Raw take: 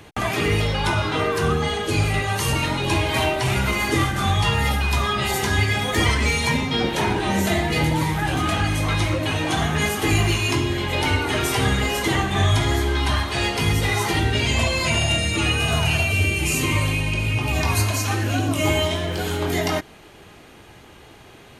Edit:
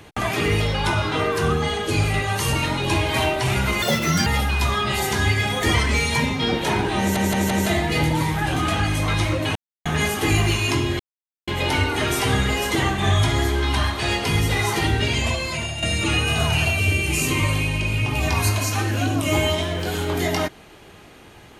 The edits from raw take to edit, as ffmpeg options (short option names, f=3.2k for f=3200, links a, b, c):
-filter_complex "[0:a]asplit=10[a][b][c][d][e][f][g][h][i][j];[a]atrim=end=3.824[k];[b]atrim=start=3.82:end=4.58,asetpts=PTS-STARTPTS,asetrate=75411,aresample=44100[l];[c]atrim=start=4.576:end=7.482[m];[d]atrim=start=7.308:end=7.482[n];[e]atrim=start=7.308:end=7.482[o];[f]atrim=start=7.308:end=9.36,asetpts=PTS-STARTPTS,afade=t=out:st=2.048:d=0.004:c=hsin[p];[g]atrim=start=9.36:end=9.66,asetpts=PTS-STARTPTS,volume=0[q];[h]atrim=start=9.66:end=10.8,asetpts=PTS-STARTPTS,afade=t=in:d=0.004:c=hsin,afade=t=out:st=1.136:d=0.004:c=hsin,apad=pad_dur=0.48[r];[i]atrim=start=10.8:end=15.15,asetpts=PTS-STARTPTS,afade=t=in:d=0.004:c=hsin,afade=t=out:st=3.54:d=0.81:silence=0.298538[s];[j]atrim=start=15.15,asetpts=PTS-STARTPTS,afade=t=in:d=0.004:c=hsin:silence=0.298538[t];[k][l]acrossfade=d=0.004:c1=hsin:c2=hsin[u];[u][m]acrossfade=d=0.004:c1=hsin:c2=hsin[v];[v][n]acrossfade=d=0.004:c1=hsin:c2=hsin[w];[w][o]acrossfade=d=0.004:c1=hsin:c2=hsin[x];[p][q][r][s][t]concat=n=5:v=0:a=1[y];[x][y]acrossfade=d=0.004:c1=hsin:c2=hsin"